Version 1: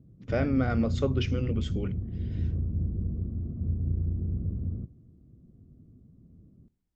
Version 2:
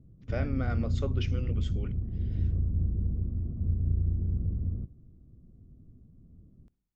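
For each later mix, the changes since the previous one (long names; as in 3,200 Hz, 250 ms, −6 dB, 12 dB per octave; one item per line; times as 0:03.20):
speech −4.5 dB
background: remove high-pass filter 140 Hz 6 dB per octave
master: add low-shelf EQ 490 Hz −5 dB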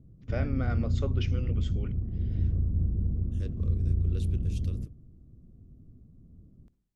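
second voice: unmuted
background: send +6.5 dB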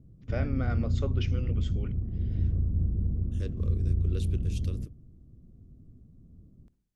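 second voice +4.0 dB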